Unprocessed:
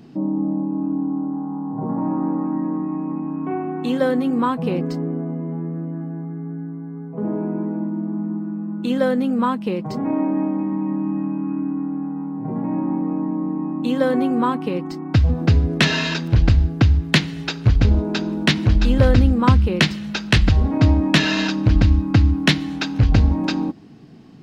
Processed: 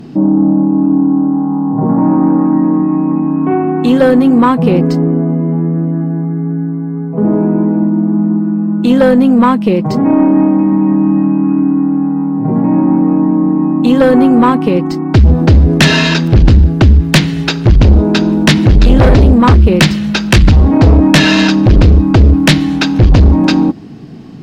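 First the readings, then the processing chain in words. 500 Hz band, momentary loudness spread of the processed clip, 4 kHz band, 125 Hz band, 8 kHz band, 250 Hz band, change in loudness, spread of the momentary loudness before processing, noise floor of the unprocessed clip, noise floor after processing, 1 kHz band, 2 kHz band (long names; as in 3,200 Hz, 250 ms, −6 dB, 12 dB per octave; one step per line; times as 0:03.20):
+11.0 dB, 7 LU, +7.5 dB, +9.0 dB, can't be measured, +12.0 dB, +10.5 dB, 11 LU, −32 dBFS, −18 dBFS, +10.0 dB, +8.0 dB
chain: low-shelf EQ 480 Hz +3.5 dB
in parallel at −5 dB: sine wavefolder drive 11 dB, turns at 1 dBFS
on the sum: level −1.5 dB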